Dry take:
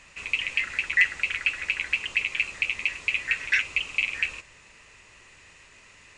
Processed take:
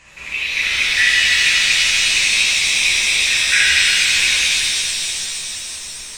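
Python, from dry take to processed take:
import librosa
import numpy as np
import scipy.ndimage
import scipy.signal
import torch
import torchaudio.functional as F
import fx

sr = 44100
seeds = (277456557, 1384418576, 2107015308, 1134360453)

y = fx.pitch_ramps(x, sr, semitones=-1.0, every_ms=298)
y = fx.rev_shimmer(y, sr, seeds[0], rt60_s=3.5, semitones=7, shimmer_db=-2, drr_db=-8.0)
y = y * 10.0 ** (2.5 / 20.0)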